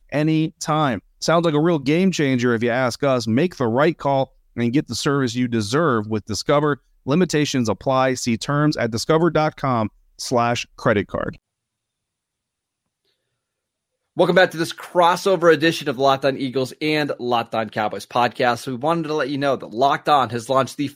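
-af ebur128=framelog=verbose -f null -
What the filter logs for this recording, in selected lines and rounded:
Integrated loudness:
  I:         -19.9 LUFS
  Threshold: -30.1 LUFS
Loudness range:
  LRA:         5.9 LU
  Threshold: -40.6 LUFS
  LRA low:   -24.6 LUFS
  LRA high:  -18.8 LUFS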